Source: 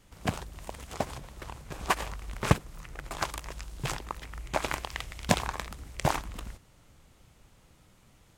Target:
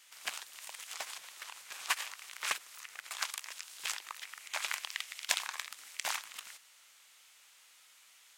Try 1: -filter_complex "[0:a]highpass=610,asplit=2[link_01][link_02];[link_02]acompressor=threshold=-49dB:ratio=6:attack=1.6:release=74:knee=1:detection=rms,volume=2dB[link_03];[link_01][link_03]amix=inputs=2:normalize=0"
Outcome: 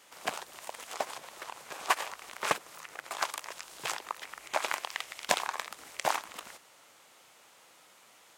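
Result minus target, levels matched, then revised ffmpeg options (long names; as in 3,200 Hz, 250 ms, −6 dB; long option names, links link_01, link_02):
500 Hz band +13.0 dB
-filter_complex "[0:a]highpass=1900,asplit=2[link_01][link_02];[link_02]acompressor=threshold=-49dB:ratio=6:attack=1.6:release=74:knee=1:detection=rms,volume=2dB[link_03];[link_01][link_03]amix=inputs=2:normalize=0"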